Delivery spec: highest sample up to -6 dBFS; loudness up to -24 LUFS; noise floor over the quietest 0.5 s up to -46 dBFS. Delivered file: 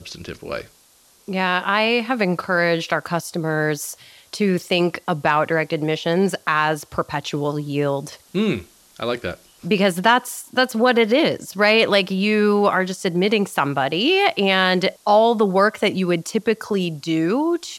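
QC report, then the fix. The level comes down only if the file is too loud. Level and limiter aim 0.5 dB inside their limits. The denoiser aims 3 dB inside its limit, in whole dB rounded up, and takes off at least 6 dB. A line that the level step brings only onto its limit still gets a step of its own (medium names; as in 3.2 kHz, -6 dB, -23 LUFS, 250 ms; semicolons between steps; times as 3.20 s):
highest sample -3.5 dBFS: fail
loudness -19.5 LUFS: fail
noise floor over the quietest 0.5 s -54 dBFS: pass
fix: trim -5 dB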